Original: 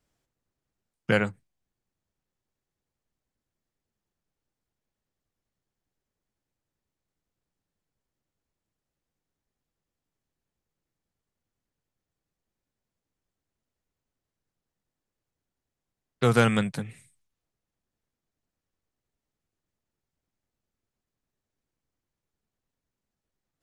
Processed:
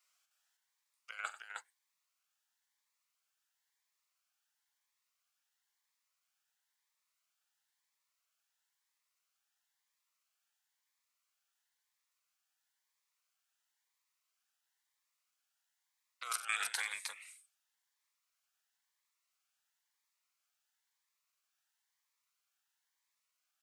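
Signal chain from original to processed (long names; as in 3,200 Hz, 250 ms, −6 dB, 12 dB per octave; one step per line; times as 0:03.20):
high-pass filter 1,000 Hz 24 dB per octave
compressor whose output falls as the input rises −36 dBFS, ratio −0.5
multi-tap delay 45/92/311 ms −13/−14.5/−4 dB
phaser whose notches keep moving one way rising 0.99 Hz
level −1 dB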